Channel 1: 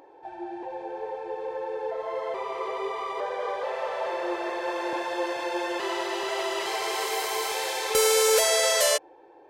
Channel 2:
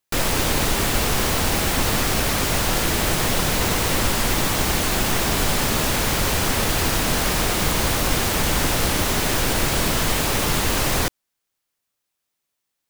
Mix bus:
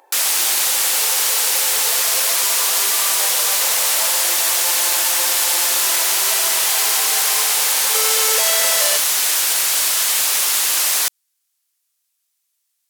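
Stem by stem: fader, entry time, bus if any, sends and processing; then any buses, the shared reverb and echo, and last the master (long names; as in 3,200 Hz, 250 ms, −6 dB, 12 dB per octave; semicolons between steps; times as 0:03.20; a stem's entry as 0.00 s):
+3.0 dB, 0.00 s, no send, no processing
−4.0 dB, 0.00 s, no send, parametric band 11,000 Hz +15 dB 2.8 octaves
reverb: not used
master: high-pass filter 760 Hz 12 dB per octave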